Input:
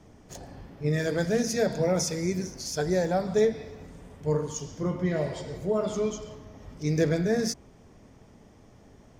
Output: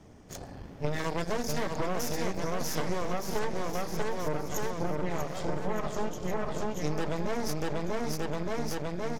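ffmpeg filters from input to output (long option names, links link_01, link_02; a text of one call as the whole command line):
ffmpeg -i in.wav -af "aeval=exprs='0.237*(cos(1*acos(clip(val(0)/0.237,-1,1)))-cos(1*PI/2))+0.0944*(cos(6*acos(clip(val(0)/0.237,-1,1)))-cos(6*PI/2))':channel_layout=same,aecho=1:1:640|1216|1734|2201|2621:0.631|0.398|0.251|0.158|0.1,acompressor=threshold=-26dB:ratio=6" out.wav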